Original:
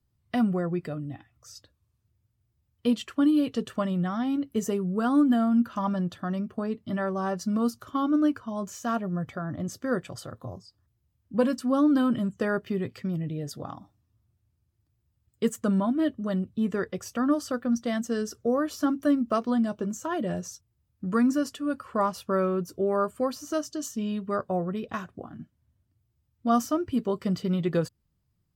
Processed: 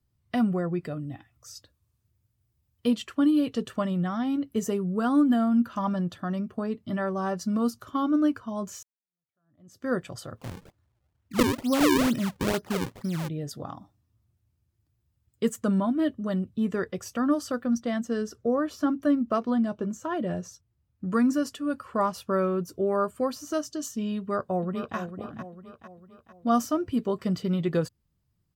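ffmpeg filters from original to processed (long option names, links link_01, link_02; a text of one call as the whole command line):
ffmpeg -i in.wav -filter_complex "[0:a]asettb=1/sr,asplit=3[link_01][link_02][link_03];[link_01]atrim=end=0.964[link_04];[link_02]atrim=start=0.96:end=2.89,asetpts=PTS-STARTPTS,afade=type=in:duration=0.004:curve=qsin,afade=type=out:start_time=1.926:duration=0.004:curve=qsin,highshelf=frequency=6600:gain=5.5[link_05];[link_03]atrim=start=2.886[link_06];[link_04][link_05]acrossfade=duration=0.004:curve1=hsin:curve2=qsin[link_07];[link_07][link_06]acrossfade=duration=0.004:curve1=qsin:curve2=hsin,asplit=3[link_08][link_09][link_10];[link_08]afade=type=out:start_time=10.37:duration=0.02[link_11];[link_09]acrusher=samples=38:mix=1:aa=0.000001:lfo=1:lforange=60.8:lforate=2.2,afade=type=in:start_time=10.37:duration=0.02,afade=type=out:start_time=13.27:duration=0.02[link_12];[link_10]afade=type=in:start_time=13.27:duration=0.02[link_13];[link_11][link_12][link_13]amix=inputs=3:normalize=0,asettb=1/sr,asplit=3[link_14][link_15][link_16];[link_14]atrim=end=17.804[link_17];[link_15]atrim=start=17.8:end=21.1,asetpts=PTS-STARTPTS,afade=type=in:duration=0.004:curve=qsin,afade=type=out:start_time=3.296:duration=0.004:curve=qsin,highshelf=frequency=4800:gain=-9[link_18];[link_16]atrim=start=21.096[link_19];[link_17][link_18]acrossfade=duration=0.004:curve1=hsin:curve2=qsin[link_20];[link_20][link_19]acrossfade=duration=0.004:curve1=qsin:curve2=hsin,asplit=2[link_21][link_22];[link_22]afade=type=in:start_time=24.17:duration=0.01,afade=type=out:start_time=24.97:duration=0.01,aecho=0:1:450|900|1350|1800|2250:0.316228|0.158114|0.0790569|0.0395285|0.0197642[link_23];[link_21][link_23]amix=inputs=2:normalize=0,asplit=2[link_24][link_25];[link_24]atrim=end=8.83,asetpts=PTS-STARTPTS,afade=type=out:start_time=8.826:duration=0.004:curve=hsin[link_26];[link_25]atrim=start=8.83,asetpts=PTS-STARTPTS,afade=type=in:duration=1.04:curve=exp[link_27];[link_26][link_27]concat=n=2:v=0:a=1" out.wav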